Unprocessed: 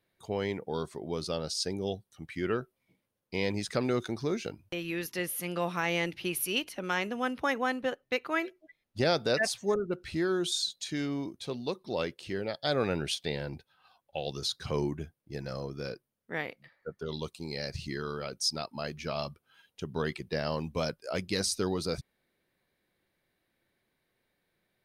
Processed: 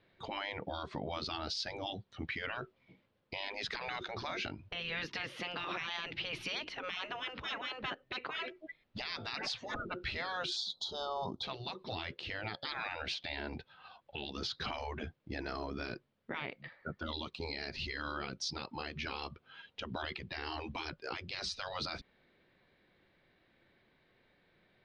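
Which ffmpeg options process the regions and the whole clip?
-filter_complex "[0:a]asettb=1/sr,asplit=3[a][b][c];[a]atrim=end=10.564[d];[b]atrim=start=10.56:end=11.43,asetpts=PTS-STARTPTS,afade=t=in:d=0.004:c=qsin,afade=t=out:st=0.866:d=0.004:c=qsin,asuperstop=centerf=2100:order=12:qfactor=1.1,equalizer=f=830:w=3:g=9[e];[c]atrim=start=11.426[f];[d][e]acrossfade=d=0.004:c1=hsin:c2=qsin[g];[g][f]acrossfade=d=0.004:c1=qsin:c2=hsin,lowpass=f=4.1k:w=0.5412,lowpass=f=4.1k:w=1.3066,afftfilt=real='re*lt(hypot(re,im),0.0501)':imag='im*lt(hypot(re,im),0.0501)':win_size=1024:overlap=0.75,alimiter=level_in=12dB:limit=-24dB:level=0:latency=1:release=182,volume=-12dB,volume=8.5dB"

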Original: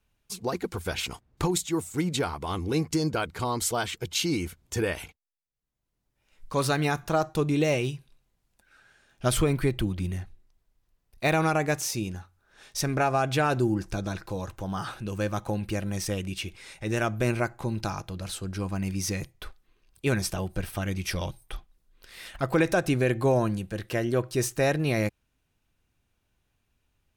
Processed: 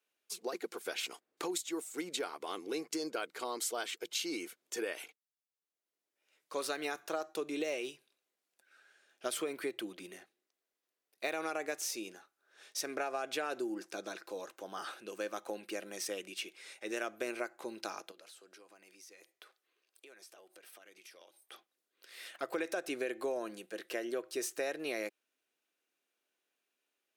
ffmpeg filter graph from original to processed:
-filter_complex "[0:a]asettb=1/sr,asplit=3[a][b][c];[a]atrim=end=18.114[d];[b]atrim=start=18.11:end=21.52,asetpts=PTS-STARTPTS,afade=t=in:d=0.004:c=qsin,afade=t=out:st=3.406:d=0.004:c=qsin,bass=f=250:g=-14,treble=f=4k:g=0,acompressor=threshold=-46dB:ratio=16:attack=3.2:release=140:knee=1:detection=peak[e];[c]atrim=start=21.516[f];[d][e]acrossfade=d=0.004:c1=hsin:c2=qsin[g];[g][f]acrossfade=d=0.004:c1=qsin:c2=hsin,highpass=f=340:w=0.5412,highpass=f=340:w=1.3066,equalizer=f=920:t=o:w=0.6:g=-6,acompressor=threshold=-28dB:ratio=4,volume=-5dB"

